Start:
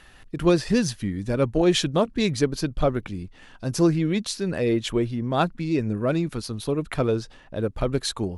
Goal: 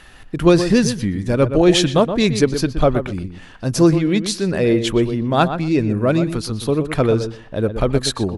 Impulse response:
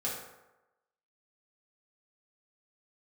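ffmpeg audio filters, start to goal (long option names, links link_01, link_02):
-filter_complex "[0:a]asplit=2[link_01][link_02];[link_02]adelay=122,lowpass=frequency=2200:poles=1,volume=-9dB,asplit=2[link_03][link_04];[link_04]adelay=122,lowpass=frequency=2200:poles=1,volume=0.17,asplit=2[link_05][link_06];[link_06]adelay=122,lowpass=frequency=2200:poles=1,volume=0.17[link_07];[link_01][link_03][link_05][link_07]amix=inputs=4:normalize=0,volume=6.5dB"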